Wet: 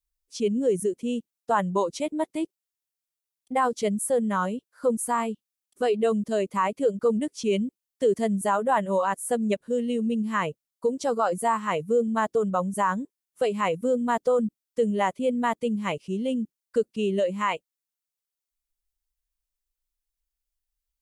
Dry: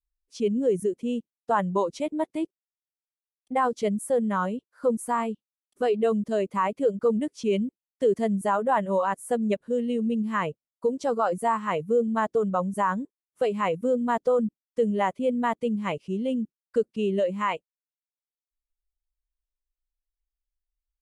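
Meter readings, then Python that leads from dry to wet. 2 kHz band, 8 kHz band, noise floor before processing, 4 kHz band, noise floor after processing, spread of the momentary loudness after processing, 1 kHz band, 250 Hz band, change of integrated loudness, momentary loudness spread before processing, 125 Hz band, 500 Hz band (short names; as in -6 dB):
+1.5 dB, +7.5 dB, under -85 dBFS, +3.5 dB, under -85 dBFS, 7 LU, +0.5 dB, 0.0 dB, +0.5 dB, 6 LU, 0.0 dB, 0.0 dB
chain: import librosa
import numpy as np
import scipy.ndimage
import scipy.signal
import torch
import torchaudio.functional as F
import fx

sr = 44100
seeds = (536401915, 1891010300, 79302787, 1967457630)

y = fx.high_shelf(x, sr, hz=3900.0, db=8.5)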